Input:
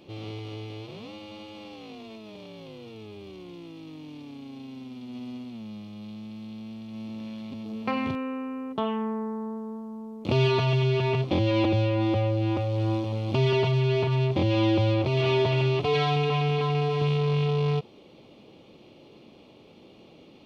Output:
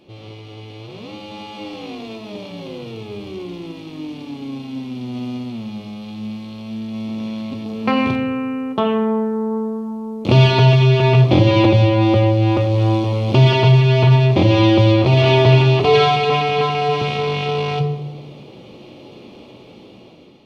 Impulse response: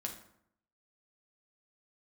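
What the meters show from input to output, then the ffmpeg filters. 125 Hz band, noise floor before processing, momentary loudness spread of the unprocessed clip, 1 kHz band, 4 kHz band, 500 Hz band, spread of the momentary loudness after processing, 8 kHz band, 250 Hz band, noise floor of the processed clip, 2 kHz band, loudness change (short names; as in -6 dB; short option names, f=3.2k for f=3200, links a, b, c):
+11.5 dB, -52 dBFS, 20 LU, +11.5 dB, +11.0 dB, +9.0 dB, 19 LU, n/a, +10.0 dB, -41 dBFS, +10.5 dB, +10.5 dB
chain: -filter_complex "[0:a]dynaudnorm=f=450:g=5:m=10.5dB,asplit=2[a][b];[1:a]atrim=start_sample=2205,asetrate=25578,aresample=44100[c];[b][c]afir=irnorm=-1:irlink=0,volume=-1dB[d];[a][d]amix=inputs=2:normalize=0,volume=-5dB"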